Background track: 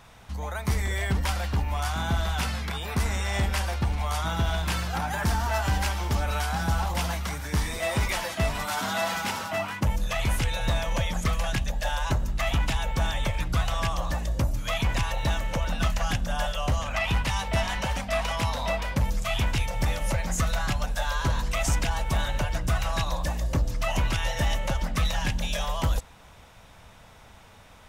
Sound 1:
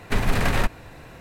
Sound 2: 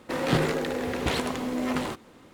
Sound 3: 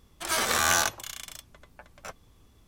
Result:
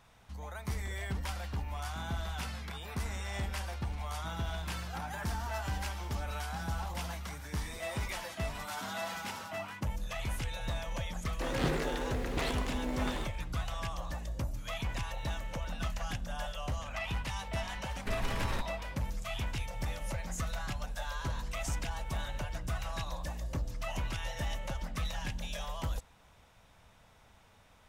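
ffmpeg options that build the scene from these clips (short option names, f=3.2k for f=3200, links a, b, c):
-filter_complex "[0:a]volume=-10.5dB[a];[1:a]bandreject=f=720:w=5.8[b];[2:a]atrim=end=2.33,asetpts=PTS-STARTPTS,volume=-8dB,afade=t=in:d=0.004:c=hsin,afade=t=out:st=2.326:d=0.004:c=hsin,adelay=11310[c];[b]atrim=end=1.2,asetpts=PTS-STARTPTS,volume=-14dB,afade=t=in:d=0.004:c=hsin,afade=t=out:st=1.196:d=0.004:c=hsin,adelay=17950[d];[a][c][d]amix=inputs=3:normalize=0"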